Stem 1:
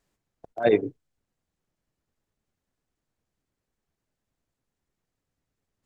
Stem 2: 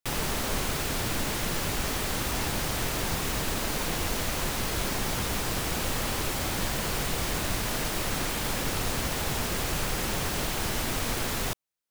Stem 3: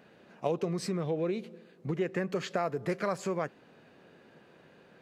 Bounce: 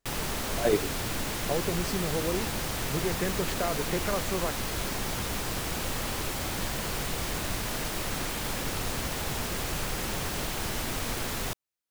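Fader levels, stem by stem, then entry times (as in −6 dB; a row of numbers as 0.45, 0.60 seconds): −5.0, −2.5, 0.0 decibels; 0.00, 0.00, 1.05 seconds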